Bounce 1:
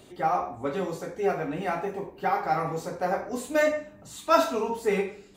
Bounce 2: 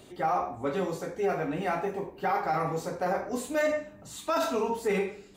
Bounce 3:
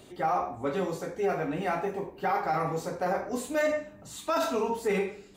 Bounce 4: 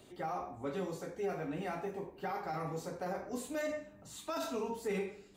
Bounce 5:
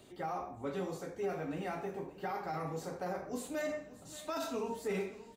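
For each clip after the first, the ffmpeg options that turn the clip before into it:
ffmpeg -i in.wav -af "alimiter=limit=-19dB:level=0:latency=1:release=14" out.wav
ffmpeg -i in.wav -af anull out.wav
ffmpeg -i in.wav -filter_complex "[0:a]acrossover=split=400|3000[link_01][link_02][link_03];[link_02]acompressor=threshold=-40dB:ratio=1.5[link_04];[link_01][link_04][link_03]amix=inputs=3:normalize=0,volume=-6.5dB" out.wav
ffmpeg -i in.wav -af "aecho=1:1:578|1156|1734:0.141|0.048|0.0163" out.wav

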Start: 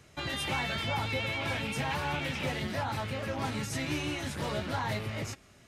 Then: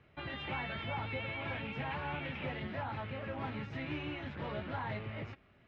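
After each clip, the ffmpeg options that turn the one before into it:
ffmpeg -i in.wav -af "lowpass=frequency=3000:width=0.5412,lowpass=frequency=3000:width=1.3066,volume=-6dB" out.wav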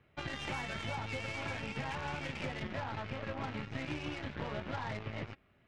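ffmpeg -i in.wav -af "aeval=exprs='0.0473*(cos(1*acos(clip(val(0)/0.0473,-1,1)))-cos(1*PI/2))+0.00596*(cos(5*acos(clip(val(0)/0.0473,-1,1)))-cos(5*PI/2))+0.00841*(cos(7*acos(clip(val(0)/0.0473,-1,1)))-cos(7*PI/2))+0.00211*(cos(8*acos(clip(val(0)/0.0473,-1,1)))-cos(8*PI/2))':channel_layout=same,acompressor=threshold=-39dB:ratio=6,volume=4.5dB" out.wav

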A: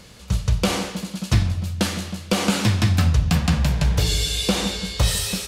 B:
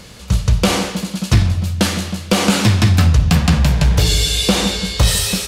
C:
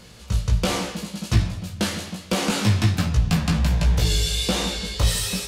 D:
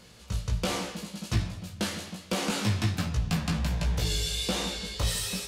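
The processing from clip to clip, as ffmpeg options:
ffmpeg -i in.wav -af "acontrast=80" out.wav
ffmpeg -i in.wav -af "flanger=delay=17:depth=2.1:speed=1.3,volume=-4.5dB" out.wav
ffmpeg -i in.wav -af "lowshelf=frequency=130:gain=-4,volume=-6dB" out.wav

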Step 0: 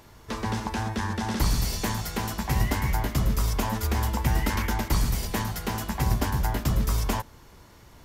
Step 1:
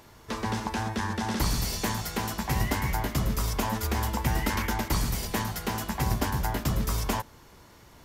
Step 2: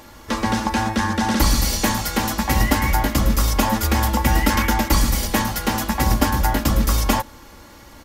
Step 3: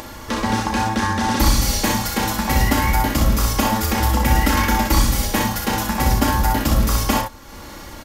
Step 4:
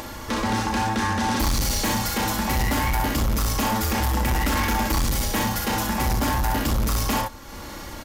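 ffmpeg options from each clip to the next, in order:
ffmpeg -i in.wav -af "lowshelf=frequency=98:gain=-6" out.wav
ffmpeg -i in.wav -af "aecho=1:1:3.6:0.55,volume=8.5dB" out.wav
ffmpeg -i in.wav -af "aecho=1:1:34|62:0.473|0.596,acompressor=mode=upward:threshold=-26dB:ratio=2.5,volume=-1dB" out.wav
ffmpeg -i in.wav -af "asoftclip=type=tanh:threshold=-18.5dB" out.wav

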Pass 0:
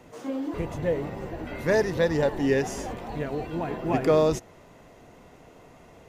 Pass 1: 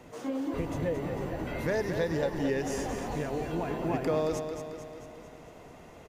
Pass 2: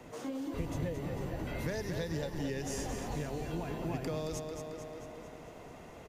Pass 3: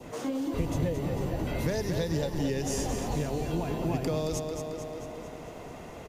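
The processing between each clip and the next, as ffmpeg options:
ffmpeg -i in.wav -af "acompressor=threshold=-30dB:ratio=2.5,aecho=1:1:222|444|666|888|1110|1332|1554:0.422|0.24|0.137|0.0781|0.0445|0.0254|0.0145" out.wav
ffmpeg -i in.wav -filter_complex "[0:a]acrossover=split=170|3000[link_01][link_02][link_03];[link_02]acompressor=threshold=-41dB:ratio=2.5[link_04];[link_01][link_04][link_03]amix=inputs=3:normalize=0" out.wav
ffmpeg -i in.wav -af "adynamicequalizer=threshold=0.00126:dfrequency=1700:dqfactor=1.4:tfrequency=1700:tqfactor=1.4:attack=5:release=100:ratio=0.375:range=2.5:mode=cutabove:tftype=bell,volume=7dB" out.wav

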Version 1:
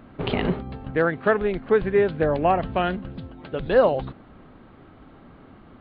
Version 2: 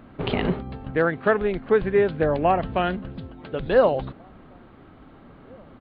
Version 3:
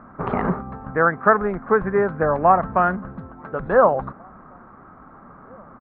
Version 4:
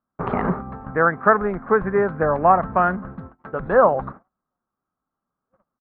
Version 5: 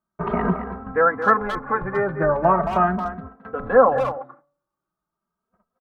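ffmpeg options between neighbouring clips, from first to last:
ffmpeg -i in.wav -filter_complex "[0:a]asplit=2[link_01][link_02];[link_02]adelay=1749,volume=-30dB,highshelf=frequency=4000:gain=-39.4[link_03];[link_01][link_03]amix=inputs=2:normalize=0" out.wav
ffmpeg -i in.wav -af "firequalizer=gain_entry='entry(110,0);entry(200,6);entry(290,0);entry(1200,15);entry(3000,-19)':delay=0.05:min_phase=1,volume=-2.5dB" out.wav
ffmpeg -i in.wav -af "agate=range=-39dB:threshold=-37dB:ratio=16:detection=peak" out.wav
ffmpeg -i in.wav -filter_complex "[0:a]bandreject=frequency=143.8:width_type=h:width=4,bandreject=frequency=287.6:width_type=h:width=4,bandreject=frequency=431.4:width_type=h:width=4,bandreject=frequency=575.2:width_type=h:width=4,bandreject=frequency=719:width_type=h:width=4,bandreject=frequency=862.8:width_type=h:width=4,bandreject=frequency=1006.6:width_type=h:width=4,bandreject=frequency=1150.4:width_type=h:width=4,bandreject=frequency=1294.2:width_type=h:width=4,asplit=2[link_01][link_02];[link_02]adelay=220,highpass=300,lowpass=3400,asoftclip=type=hard:threshold=-9.5dB,volume=-9dB[link_03];[link_01][link_03]amix=inputs=2:normalize=0,asplit=2[link_04][link_05];[link_05]adelay=2.8,afreqshift=0.39[link_06];[link_04][link_06]amix=inputs=2:normalize=1,volume=2.5dB" out.wav

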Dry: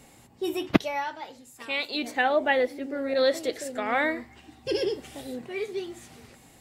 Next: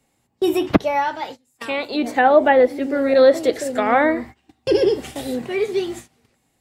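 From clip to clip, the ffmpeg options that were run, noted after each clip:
ffmpeg -i in.wav -filter_complex "[0:a]agate=range=-24dB:threshold=-44dB:ratio=16:detection=peak,acrossover=split=200|1500[link_01][link_02][link_03];[link_03]acompressor=threshold=-42dB:ratio=6[link_04];[link_01][link_02][link_04]amix=inputs=3:normalize=0,alimiter=level_in=12dB:limit=-1dB:release=50:level=0:latency=1,volume=-1dB" out.wav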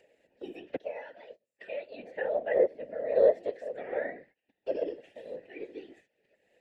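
ffmpeg -i in.wav -filter_complex "[0:a]asplit=3[link_01][link_02][link_03];[link_01]bandpass=frequency=530:width_type=q:width=8,volume=0dB[link_04];[link_02]bandpass=frequency=1840:width_type=q:width=8,volume=-6dB[link_05];[link_03]bandpass=frequency=2480:width_type=q:width=8,volume=-9dB[link_06];[link_04][link_05][link_06]amix=inputs=3:normalize=0,acompressor=mode=upward:threshold=-39dB:ratio=2.5,afftfilt=real='hypot(re,im)*cos(2*PI*random(0))':imag='hypot(re,im)*sin(2*PI*random(1))':win_size=512:overlap=0.75,volume=-3dB" out.wav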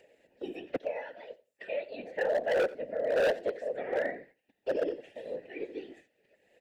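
ffmpeg -i in.wav -af "asoftclip=type=hard:threshold=-26.5dB,aecho=1:1:88|176:0.1|0.017,volume=3dB" out.wav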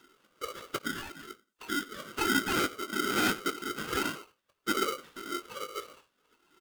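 ffmpeg -i in.wav -filter_complex "[0:a]flanger=delay=1.6:depth=1.6:regen=44:speed=1.7:shape=triangular,asplit=2[link_01][link_02];[link_02]adelay=20,volume=-10.5dB[link_03];[link_01][link_03]amix=inputs=2:normalize=0,aeval=exprs='val(0)*sgn(sin(2*PI*860*n/s))':channel_layout=same,volume=3dB" out.wav

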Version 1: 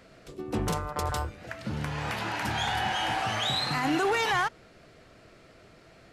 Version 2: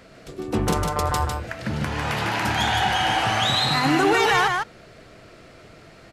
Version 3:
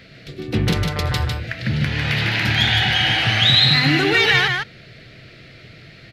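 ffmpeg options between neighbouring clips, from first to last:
ffmpeg -i in.wav -af "aecho=1:1:151:0.668,volume=6dB" out.wav
ffmpeg -i in.wav -af "equalizer=frequency=125:width_type=o:width=1:gain=10,equalizer=frequency=1000:width_type=o:width=1:gain=-11,equalizer=frequency=2000:width_type=o:width=1:gain=9,equalizer=frequency=4000:width_type=o:width=1:gain=10,equalizer=frequency=8000:width_type=o:width=1:gain=-9" out.wav

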